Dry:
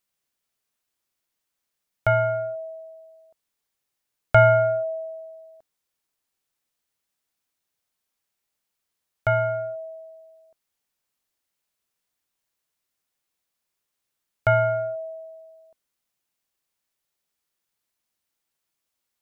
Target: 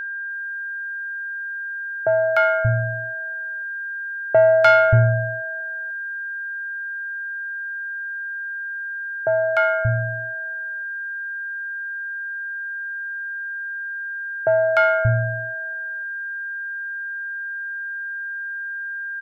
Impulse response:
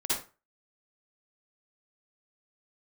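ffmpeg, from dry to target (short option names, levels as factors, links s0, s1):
-filter_complex "[0:a]acrossover=split=210|770[s0][s1][s2];[s2]adelay=300[s3];[s0]adelay=580[s4];[s4][s1][s3]amix=inputs=3:normalize=0,asoftclip=type=tanh:threshold=0.237,aeval=exprs='val(0)+0.02*sin(2*PI*1600*n/s)':c=same,volume=2.37"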